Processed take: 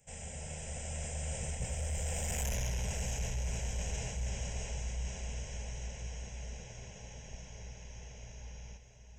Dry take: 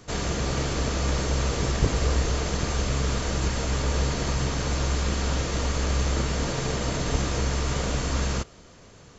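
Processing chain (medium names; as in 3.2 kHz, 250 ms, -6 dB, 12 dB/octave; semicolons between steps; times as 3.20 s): Doppler pass-by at 2.47 s, 42 m/s, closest 4.9 m; peaking EQ 1.5 kHz -8.5 dB 1.5 oct; band-stop 3.6 kHz, Q 9.2; echo that smears into a reverb 676 ms, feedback 54%, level -10 dB; saturation -32 dBFS, distortion -7 dB; treble shelf 2.4 kHz +11 dB; static phaser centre 1.2 kHz, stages 6; reverse; compression 6:1, threshold -44 dBFS, peak gain reduction 10.5 dB; reverse; trim +11 dB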